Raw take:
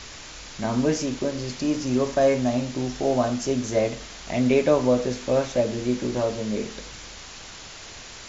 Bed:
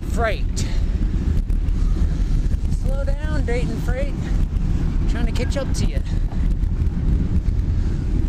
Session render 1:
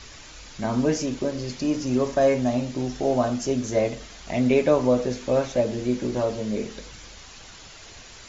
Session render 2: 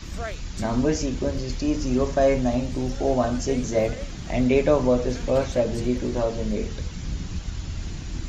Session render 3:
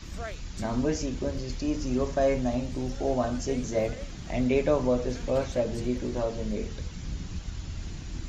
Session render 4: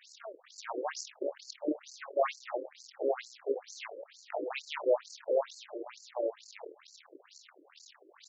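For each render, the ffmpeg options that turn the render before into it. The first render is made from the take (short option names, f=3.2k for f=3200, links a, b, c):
-af "afftdn=nr=6:nf=-41"
-filter_complex "[1:a]volume=-11.5dB[a];[0:a][a]amix=inputs=2:normalize=0"
-af "volume=-5dB"
-af "aeval=exprs='0.266*(cos(1*acos(clip(val(0)/0.266,-1,1)))-cos(1*PI/2))+0.0473*(cos(6*acos(clip(val(0)/0.266,-1,1)))-cos(6*PI/2))+0.0133*(cos(7*acos(clip(val(0)/0.266,-1,1)))-cos(7*PI/2))':c=same,afftfilt=real='re*between(b*sr/1024,410*pow(6000/410,0.5+0.5*sin(2*PI*2.2*pts/sr))/1.41,410*pow(6000/410,0.5+0.5*sin(2*PI*2.2*pts/sr))*1.41)':imag='im*between(b*sr/1024,410*pow(6000/410,0.5+0.5*sin(2*PI*2.2*pts/sr))/1.41,410*pow(6000/410,0.5+0.5*sin(2*PI*2.2*pts/sr))*1.41)':win_size=1024:overlap=0.75"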